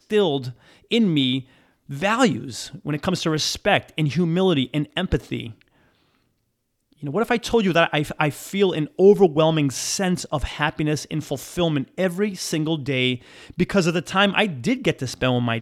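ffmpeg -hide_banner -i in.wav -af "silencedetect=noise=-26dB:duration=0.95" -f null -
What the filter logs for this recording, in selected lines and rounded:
silence_start: 5.47
silence_end: 7.03 | silence_duration: 1.57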